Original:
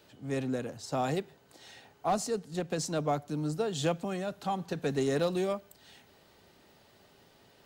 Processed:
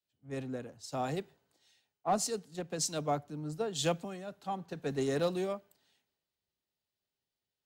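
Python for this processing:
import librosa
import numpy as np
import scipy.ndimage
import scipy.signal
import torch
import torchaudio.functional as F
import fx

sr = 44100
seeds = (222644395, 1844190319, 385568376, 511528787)

y = fx.band_widen(x, sr, depth_pct=100)
y = y * librosa.db_to_amplitude(-4.5)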